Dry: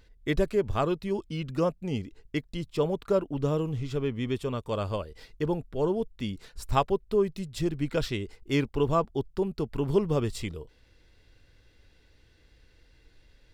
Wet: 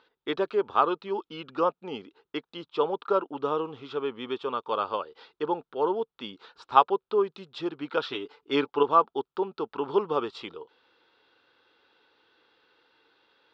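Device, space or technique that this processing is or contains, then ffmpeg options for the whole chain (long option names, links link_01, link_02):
phone earpiece: -filter_complex "[0:a]highpass=470,equalizer=frequency=620:width_type=q:width=4:gain=-8,equalizer=frequency=890:width_type=q:width=4:gain=6,equalizer=frequency=1300:width_type=q:width=4:gain=9,equalizer=frequency=2000:width_type=q:width=4:gain=-8,equalizer=frequency=3500:width_type=q:width=4:gain=4,lowpass=frequency=4200:width=0.5412,lowpass=frequency=4200:width=1.3066,asettb=1/sr,asplit=3[link_01][link_02][link_03];[link_01]atrim=end=8.094[link_04];[link_02]atrim=start=8.09:end=8.83,asetpts=PTS-STARTPTS,afade=type=in:duration=0.004:curve=qsin,afade=type=out:start_time=0.736:duration=0.004:curve=qsin,aecho=1:1:6.9:0.62,atrim=end_sample=32634[link_05];[link_03]atrim=start=8.826[link_06];[link_04][link_05]acrossfade=duration=0.004:curve1=hsin:curve2=qsin[link_07];[link_07][link_06]acrossfade=duration=0.004:curve1=qsin:curve2=hsin,equalizer=frequency=490:width_type=o:width=3:gain=5.5"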